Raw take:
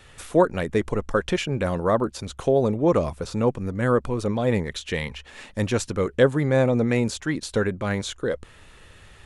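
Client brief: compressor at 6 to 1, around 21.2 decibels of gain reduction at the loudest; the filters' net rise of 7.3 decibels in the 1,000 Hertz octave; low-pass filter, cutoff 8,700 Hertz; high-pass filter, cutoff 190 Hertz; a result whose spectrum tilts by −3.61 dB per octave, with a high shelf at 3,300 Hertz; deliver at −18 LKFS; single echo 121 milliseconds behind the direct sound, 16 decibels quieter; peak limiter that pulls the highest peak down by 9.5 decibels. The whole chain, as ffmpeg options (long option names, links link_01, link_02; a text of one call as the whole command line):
ffmpeg -i in.wav -af "highpass=190,lowpass=8700,equalizer=frequency=1000:width_type=o:gain=8.5,highshelf=frequency=3300:gain=5.5,acompressor=threshold=-33dB:ratio=6,alimiter=level_in=3dB:limit=-24dB:level=0:latency=1,volume=-3dB,aecho=1:1:121:0.158,volume=21.5dB" out.wav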